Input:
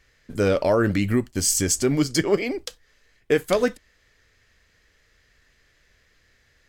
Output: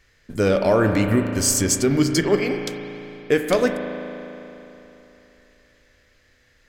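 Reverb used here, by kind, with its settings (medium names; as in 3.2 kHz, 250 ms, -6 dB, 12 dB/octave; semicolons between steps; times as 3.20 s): spring tank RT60 3.3 s, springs 36 ms, chirp 65 ms, DRR 5 dB; trim +1.5 dB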